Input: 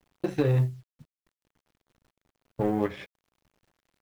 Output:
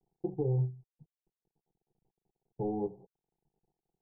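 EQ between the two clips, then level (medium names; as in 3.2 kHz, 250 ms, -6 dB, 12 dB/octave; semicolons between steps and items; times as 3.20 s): steep low-pass 850 Hz 72 dB/octave; static phaser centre 390 Hz, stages 8; -4.5 dB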